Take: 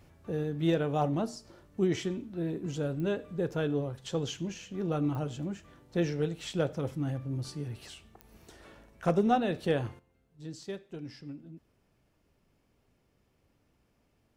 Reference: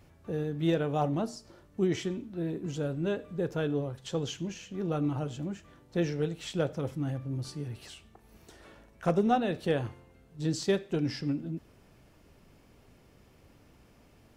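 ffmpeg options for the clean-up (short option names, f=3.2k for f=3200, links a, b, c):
-af "adeclick=t=4,asetnsamples=n=441:p=0,asendcmd='9.99 volume volume 12dB',volume=0dB"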